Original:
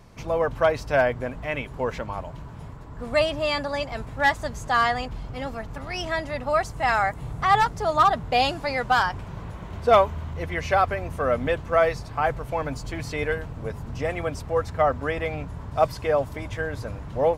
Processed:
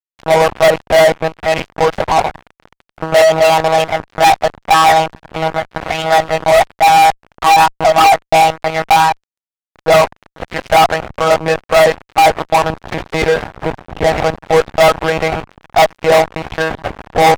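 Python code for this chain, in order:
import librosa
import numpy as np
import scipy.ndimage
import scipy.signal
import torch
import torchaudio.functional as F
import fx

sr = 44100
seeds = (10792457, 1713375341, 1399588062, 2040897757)

y = fx.lpc_monotone(x, sr, seeds[0], pitch_hz=160.0, order=10)
y = fx.peak_eq(y, sr, hz=760.0, db=13.5, octaves=0.56)
y = fx.rider(y, sr, range_db=4, speed_s=2.0)
y = fx.dynamic_eq(y, sr, hz=1100.0, q=0.96, threshold_db=-21.0, ratio=4.0, max_db=4)
y = fx.fuzz(y, sr, gain_db=17.0, gate_db=-26.0)
y = y * 10.0 ** (8.0 / 20.0)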